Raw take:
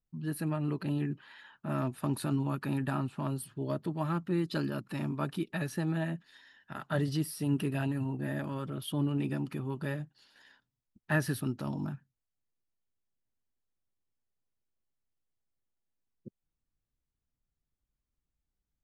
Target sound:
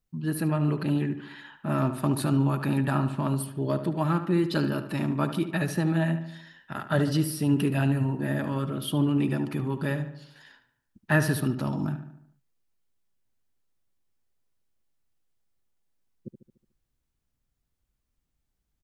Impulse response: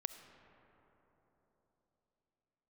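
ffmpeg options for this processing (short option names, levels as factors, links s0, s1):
-filter_complex "[0:a]asplit=2[s0][s1];[s1]adelay=73,lowpass=f=3200:p=1,volume=0.316,asplit=2[s2][s3];[s3]adelay=73,lowpass=f=3200:p=1,volume=0.53,asplit=2[s4][s5];[s5]adelay=73,lowpass=f=3200:p=1,volume=0.53,asplit=2[s6][s7];[s7]adelay=73,lowpass=f=3200:p=1,volume=0.53,asplit=2[s8][s9];[s9]adelay=73,lowpass=f=3200:p=1,volume=0.53,asplit=2[s10][s11];[s11]adelay=73,lowpass=f=3200:p=1,volume=0.53[s12];[s0][s2][s4][s6][s8][s10][s12]amix=inputs=7:normalize=0,volume=2.11"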